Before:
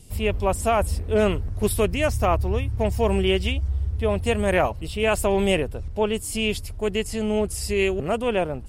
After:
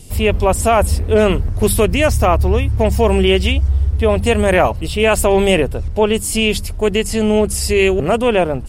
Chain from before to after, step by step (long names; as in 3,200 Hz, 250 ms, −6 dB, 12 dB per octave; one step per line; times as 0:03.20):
mains-hum notches 50/100/150/200 Hz
in parallel at +3 dB: brickwall limiter −15.5 dBFS, peak gain reduction 8 dB
on the sum: level +2.5 dB